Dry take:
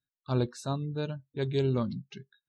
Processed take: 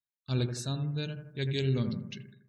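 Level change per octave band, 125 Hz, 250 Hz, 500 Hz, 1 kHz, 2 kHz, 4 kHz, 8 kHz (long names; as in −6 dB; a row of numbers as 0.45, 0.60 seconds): +1.0, −1.5, −5.0, −8.5, +2.5, +5.0, +5.0 decibels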